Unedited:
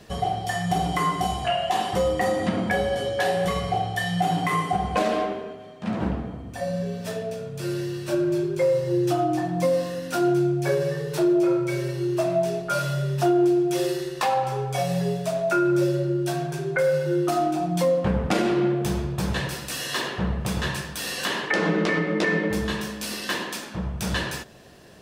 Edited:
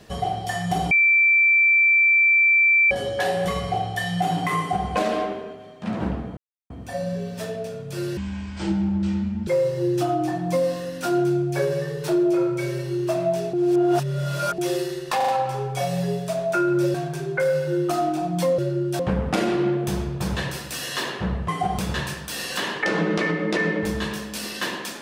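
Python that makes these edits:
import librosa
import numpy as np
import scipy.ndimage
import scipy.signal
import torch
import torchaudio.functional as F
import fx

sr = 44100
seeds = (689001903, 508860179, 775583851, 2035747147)

y = fx.edit(x, sr, fx.bleep(start_s=0.91, length_s=2.0, hz=2340.0, db=-13.5),
    fx.duplicate(start_s=4.58, length_s=0.3, to_s=20.46),
    fx.insert_silence(at_s=6.37, length_s=0.33),
    fx.speed_span(start_s=7.84, length_s=0.73, speed=0.56),
    fx.reverse_span(start_s=12.63, length_s=1.05),
    fx.stutter(start_s=14.26, slice_s=0.04, count=4),
    fx.move(start_s=15.92, length_s=0.41, to_s=17.97), tone=tone)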